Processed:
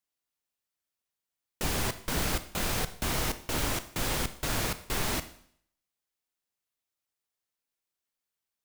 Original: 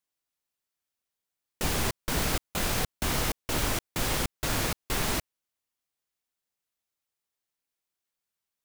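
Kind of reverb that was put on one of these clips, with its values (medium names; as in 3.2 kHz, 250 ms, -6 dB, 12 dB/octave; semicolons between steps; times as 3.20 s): Schroeder reverb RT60 0.62 s, combs from 25 ms, DRR 11.5 dB; trim -2 dB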